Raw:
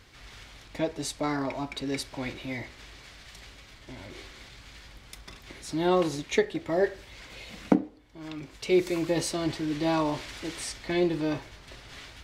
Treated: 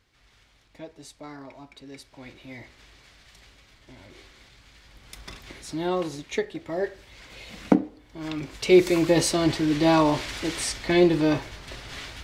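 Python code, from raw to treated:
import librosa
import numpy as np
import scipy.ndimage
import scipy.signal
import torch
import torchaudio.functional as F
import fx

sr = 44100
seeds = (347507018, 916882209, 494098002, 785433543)

y = fx.gain(x, sr, db=fx.line((2.0, -12.0), (2.7, -5.0), (4.82, -5.0), (5.29, 5.0), (5.93, -3.0), (6.95, -3.0), (8.25, 7.0)))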